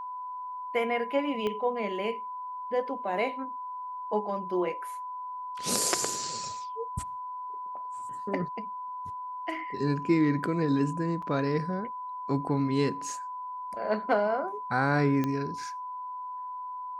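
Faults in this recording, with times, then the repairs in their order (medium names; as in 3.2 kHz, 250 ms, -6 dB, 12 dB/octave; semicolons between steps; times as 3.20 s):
whine 1 kHz -35 dBFS
1.47 s: pop -20 dBFS
11.22 s: dropout 4.7 ms
15.24 s: pop -17 dBFS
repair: de-click; band-stop 1 kHz, Q 30; interpolate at 11.22 s, 4.7 ms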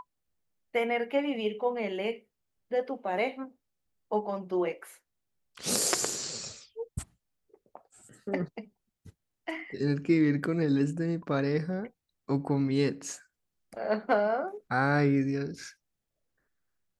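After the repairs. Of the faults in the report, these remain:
1.47 s: pop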